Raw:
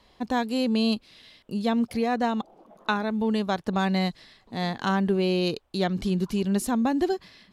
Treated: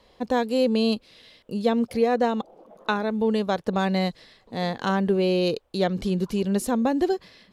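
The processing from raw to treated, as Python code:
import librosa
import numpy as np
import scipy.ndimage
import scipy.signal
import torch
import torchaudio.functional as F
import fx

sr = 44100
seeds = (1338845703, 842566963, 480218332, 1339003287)

y = fx.peak_eq(x, sr, hz=500.0, db=9.0, octaves=0.46)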